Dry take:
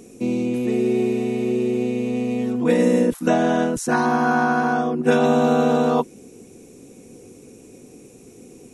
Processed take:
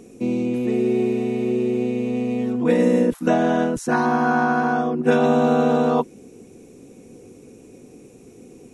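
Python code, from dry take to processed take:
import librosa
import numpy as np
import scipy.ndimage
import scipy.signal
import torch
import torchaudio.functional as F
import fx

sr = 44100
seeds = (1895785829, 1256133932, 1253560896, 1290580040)

y = fx.high_shelf(x, sr, hz=4400.0, db=-7.0)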